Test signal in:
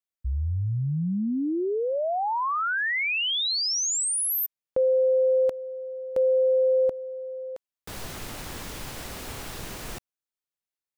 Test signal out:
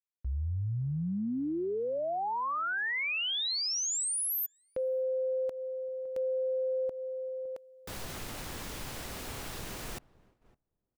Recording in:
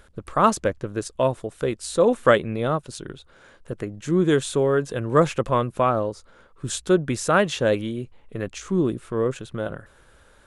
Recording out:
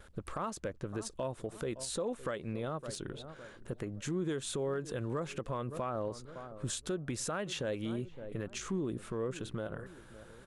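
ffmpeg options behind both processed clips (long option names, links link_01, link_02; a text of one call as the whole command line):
ffmpeg -i in.wav -filter_complex "[0:a]asplit=2[link_01][link_02];[link_02]adelay=561,lowpass=frequency=890:poles=1,volume=-22dB,asplit=2[link_03][link_04];[link_04]adelay=561,lowpass=frequency=890:poles=1,volume=0.36,asplit=2[link_05][link_06];[link_06]adelay=561,lowpass=frequency=890:poles=1,volume=0.36[link_07];[link_01][link_03][link_05][link_07]amix=inputs=4:normalize=0,acompressor=threshold=-26dB:ratio=16:attack=0.18:release=174:knee=6:detection=rms,agate=range=-13dB:threshold=-59dB:ratio=16:release=365:detection=peak,volume=-2.5dB" out.wav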